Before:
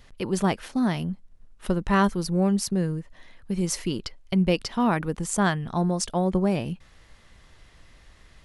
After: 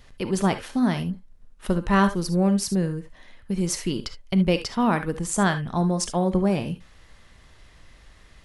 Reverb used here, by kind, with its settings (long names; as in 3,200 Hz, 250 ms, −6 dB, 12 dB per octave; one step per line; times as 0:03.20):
reverb whose tail is shaped and stops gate 90 ms rising, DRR 9.5 dB
level +1 dB